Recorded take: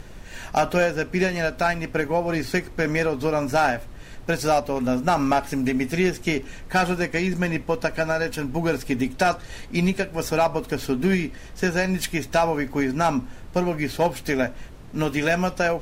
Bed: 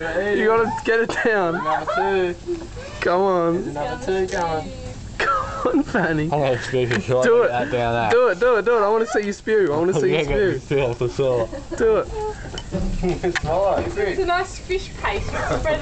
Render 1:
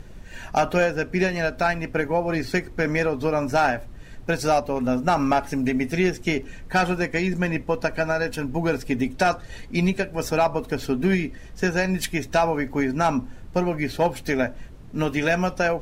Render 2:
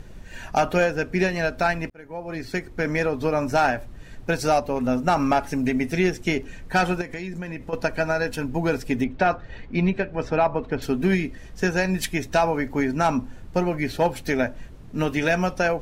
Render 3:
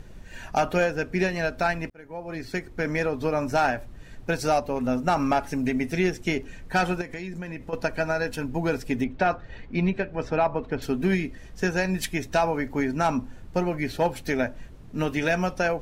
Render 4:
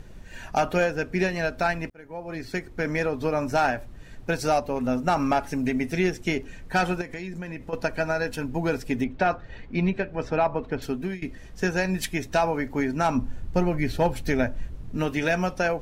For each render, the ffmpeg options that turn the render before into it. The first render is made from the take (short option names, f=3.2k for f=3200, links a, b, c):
-af "afftdn=nr=6:nf=-41"
-filter_complex "[0:a]asettb=1/sr,asplit=3[a][b][c];[a]atrim=end=7.014[d];[b]atrim=start=7.01:end=7.73,asetpts=PTS-STARTPTS,afade=t=in:d=0.004:c=qsin,afade=t=out:st=0.716:d=0.004:c=qsin,acompressor=threshold=-29dB:ratio=5:attack=3.2:release=140:knee=1:detection=peak[e];[c]atrim=start=7.726[f];[d][e]acrossfade=d=0.004:c1=hsin:c2=qsin[g];[g][f]acrossfade=d=0.004:c1=qsin:c2=hsin,asettb=1/sr,asplit=3[h][i][j];[h]atrim=end=9.044[k];[i]atrim=start=9.04:end=10.82,asetpts=PTS-STARTPTS,afade=t=in:d=0.004:c=qsin,afade=t=out:st=1.776:d=0.004:c=qsin,lowpass=2.7k[l];[j]atrim=start=10.816[m];[k][l]acrossfade=d=0.004:c1=hsin:c2=qsin[n];[n][m]acrossfade=d=0.004:c1=qsin:c2=hsin,asplit=2[o][p];[o]atrim=end=1.9,asetpts=PTS-STARTPTS,afade=t=out:st=1.896:d=0.004:c=hsin[q];[p]atrim=start=1.9,asetpts=PTS-STARTPTS,afade=t=in:d=1.52:c=qsin[r];[q][r]concat=n=2:v=0:a=1"
-af "volume=-2.5dB"
-filter_complex "[0:a]asettb=1/sr,asplit=3[a][b][c];[a]atrim=end=13.154[d];[b]atrim=start=13.15:end=14.97,asetpts=PTS-STARTPTS,afade=t=in:d=0.004:c=qsin,afade=t=out:st=1.816:d=0.004:c=qsin,lowshelf=f=130:g=11[e];[c]atrim=start=14.966[f];[d][e]acrossfade=d=0.004:c1=hsin:c2=qsin[g];[g][f]acrossfade=d=0.004:c1=qsin:c2=hsin,asplit=2[h][i];[h]atrim=end=11.22,asetpts=PTS-STARTPTS,afade=t=out:st=10.64:d=0.58:c=qsin:silence=0.105925[j];[i]atrim=start=11.22,asetpts=PTS-STARTPTS,afade=t=in:d=0.004:c=hsin:silence=0.105925[k];[j][k]concat=n=2:v=0:a=1"